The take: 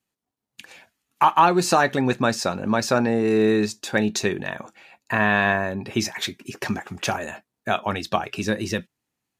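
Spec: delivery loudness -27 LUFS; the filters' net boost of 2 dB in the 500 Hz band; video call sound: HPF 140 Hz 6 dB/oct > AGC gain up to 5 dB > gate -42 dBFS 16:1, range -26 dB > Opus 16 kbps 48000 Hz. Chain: HPF 140 Hz 6 dB/oct; bell 500 Hz +3 dB; AGC gain up to 5 dB; gate -42 dBFS 16:1, range -26 dB; gain -4.5 dB; Opus 16 kbps 48000 Hz

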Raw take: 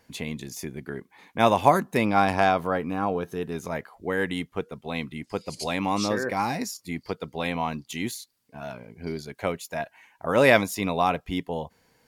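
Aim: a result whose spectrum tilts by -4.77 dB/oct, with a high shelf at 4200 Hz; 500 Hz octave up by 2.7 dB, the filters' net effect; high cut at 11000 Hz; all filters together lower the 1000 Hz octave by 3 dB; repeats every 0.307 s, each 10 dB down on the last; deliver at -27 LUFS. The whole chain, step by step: LPF 11000 Hz; bell 500 Hz +5.5 dB; bell 1000 Hz -7 dB; high shelf 4200 Hz -5 dB; feedback echo 0.307 s, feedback 32%, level -10 dB; gain -1.5 dB

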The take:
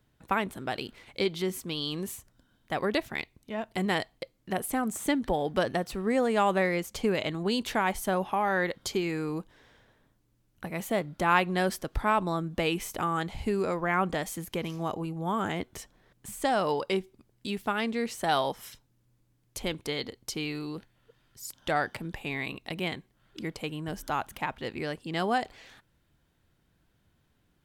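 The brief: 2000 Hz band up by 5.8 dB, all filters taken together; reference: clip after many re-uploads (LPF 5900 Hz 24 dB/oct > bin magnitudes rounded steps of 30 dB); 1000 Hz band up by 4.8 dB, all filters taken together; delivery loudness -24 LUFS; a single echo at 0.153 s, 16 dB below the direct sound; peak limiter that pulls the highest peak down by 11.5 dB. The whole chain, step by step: bell 1000 Hz +5 dB; bell 2000 Hz +5.5 dB; limiter -15.5 dBFS; LPF 5900 Hz 24 dB/oct; echo 0.153 s -16 dB; bin magnitudes rounded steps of 30 dB; gain +6 dB

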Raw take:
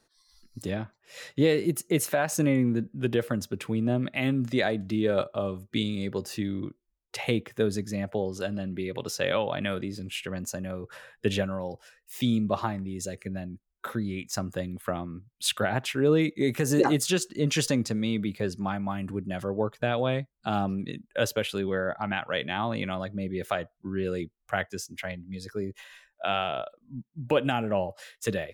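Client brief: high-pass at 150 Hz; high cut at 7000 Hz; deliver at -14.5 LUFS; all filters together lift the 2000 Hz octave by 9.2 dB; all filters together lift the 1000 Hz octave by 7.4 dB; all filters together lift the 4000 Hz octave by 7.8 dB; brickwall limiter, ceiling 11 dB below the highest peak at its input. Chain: HPF 150 Hz; LPF 7000 Hz; bell 1000 Hz +8 dB; bell 2000 Hz +7.5 dB; bell 4000 Hz +7 dB; gain +14.5 dB; limiter -1 dBFS

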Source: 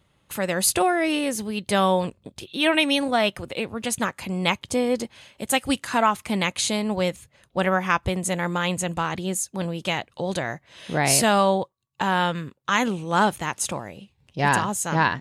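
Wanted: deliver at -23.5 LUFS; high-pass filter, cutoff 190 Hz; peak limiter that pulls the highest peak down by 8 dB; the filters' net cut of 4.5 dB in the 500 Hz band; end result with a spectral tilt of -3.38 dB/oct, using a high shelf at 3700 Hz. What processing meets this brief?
HPF 190 Hz; bell 500 Hz -5.5 dB; high shelf 3700 Hz -4.5 dB; gain +4.5 dB; limiter -10 dBFS

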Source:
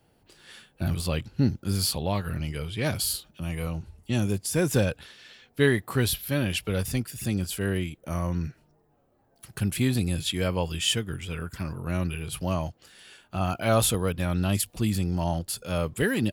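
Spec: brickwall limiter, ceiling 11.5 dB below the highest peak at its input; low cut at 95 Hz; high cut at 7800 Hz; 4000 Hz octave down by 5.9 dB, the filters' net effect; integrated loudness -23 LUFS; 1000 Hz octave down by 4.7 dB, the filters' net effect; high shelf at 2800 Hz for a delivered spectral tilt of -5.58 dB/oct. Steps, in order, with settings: HPF 95 Hz; LPF 7800 Hz; bell 1000 Hz -6 dB; high shelf 2800 Hz -4.5 dB; bell 4000 Hz -3.5 dB; gain +10.5 dB; limiter -11 dBFS

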